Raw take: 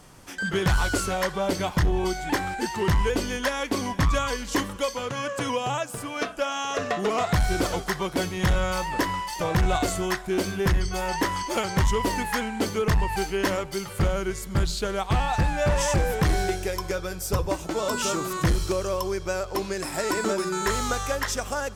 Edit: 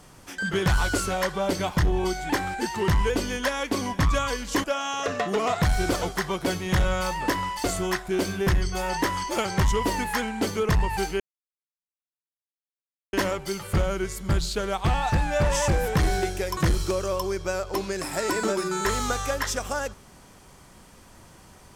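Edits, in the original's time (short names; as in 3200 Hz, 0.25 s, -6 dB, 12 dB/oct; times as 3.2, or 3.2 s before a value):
4.64–6.35 cut
9.35–9.83 cut
13.39 insert silence 1.93 s
16.83–18.38 cut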